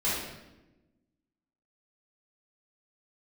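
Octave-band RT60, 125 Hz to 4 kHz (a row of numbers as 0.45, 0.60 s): 1.4, 1.6, 1.2, 0.90, 0.85, 0.75 s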